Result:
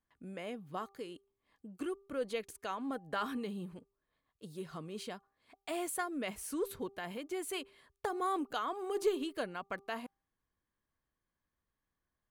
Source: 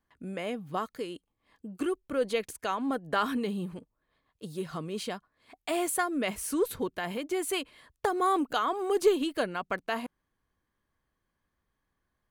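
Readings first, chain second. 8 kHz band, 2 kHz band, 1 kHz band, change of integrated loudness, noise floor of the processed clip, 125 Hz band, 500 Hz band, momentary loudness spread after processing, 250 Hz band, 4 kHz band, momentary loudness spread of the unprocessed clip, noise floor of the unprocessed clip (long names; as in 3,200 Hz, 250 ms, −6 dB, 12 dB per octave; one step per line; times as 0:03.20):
−8.0 dB, −8.0 dB, −8.0 dB, −8.0 dB, below −85 dBFS, −8.0 dB, −8.0 dB, 14 LU, −8.0 dB, −8.0 dB, 14 LU, −82 dBFS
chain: hum removal 395.5 Hz, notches 3
level −8 dB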